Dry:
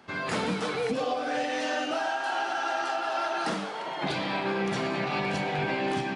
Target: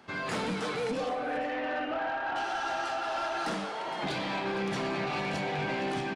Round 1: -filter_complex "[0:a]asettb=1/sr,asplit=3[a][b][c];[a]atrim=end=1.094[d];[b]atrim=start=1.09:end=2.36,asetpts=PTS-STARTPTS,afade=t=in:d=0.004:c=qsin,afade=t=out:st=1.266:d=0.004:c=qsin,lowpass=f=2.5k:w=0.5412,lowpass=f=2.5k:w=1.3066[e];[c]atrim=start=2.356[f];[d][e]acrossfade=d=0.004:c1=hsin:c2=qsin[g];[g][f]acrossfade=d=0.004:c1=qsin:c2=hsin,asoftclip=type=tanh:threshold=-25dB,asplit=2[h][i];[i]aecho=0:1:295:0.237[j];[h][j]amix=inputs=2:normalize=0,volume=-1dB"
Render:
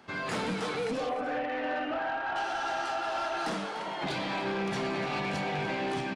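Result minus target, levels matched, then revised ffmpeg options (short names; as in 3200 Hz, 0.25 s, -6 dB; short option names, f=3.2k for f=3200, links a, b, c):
echo 0.168 s early
-filter_complex "[0:a]asettb=1/sr,asplit=3[a][b][c];[a]atrim=end=1.094[d];[b]atrim=start=1.09:end=2.36,asetpts=PTS-STARTPTS,afade=t=in:d=0.004:c=qsin,afade=t=out:st=1.266:d=0.004:c=qsin,lowpass=f=2.5k:w=0.5412,lowpass=f=2.5k:w=1.3066[e];[c]atrim=start=2.356[f];[d][e]acrossfade=d=0.004:c1=hsin:c2=qsin[g];[g][f]acrossfade=d=0.004:c1=qsin:c2=hsin,asoftclip=type=tanh:threshold=-25dB,asplit=2[h][i];[i]aecho=0:1:463:0.237[j];[h][j]amix=inputs=2:normalize=0,volume=-1dB"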